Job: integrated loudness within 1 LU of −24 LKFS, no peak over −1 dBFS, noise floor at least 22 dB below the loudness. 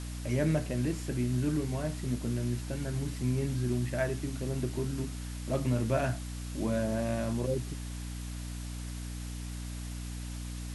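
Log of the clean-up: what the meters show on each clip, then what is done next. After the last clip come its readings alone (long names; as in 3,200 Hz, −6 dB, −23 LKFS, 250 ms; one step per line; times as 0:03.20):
mains hum 60 Hz; hum harmonics up to 300 Hz; level of the hum −36 dBFS; background noise floor −39 dBFS; target noise floor −56 dBFS; integrated loudness −33.5 LKFS; sample peak −16.0 dBFS; target loudness −24.0 LKFS
→ hum removal 60 Hz, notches 5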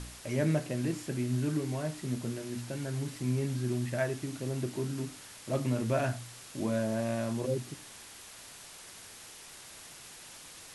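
mains hum none found; background noise floor −50 dBFS; target noise floor −56 dBFS
→ noise reduction from a noise print 6 dB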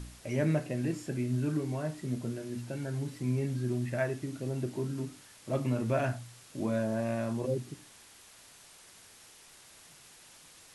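background noise floor −56 dBFS; integrated loudness −33.5 LKFS; sample peak −16.5 dBFS; target loudness −24.0 LKFS
→ level +9.5 dB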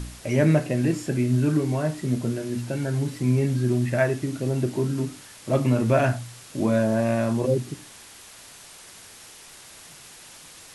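integrated loudness −24.0 LKFS; sample peak −7.0 dBFS; background noise floor −46 dBFS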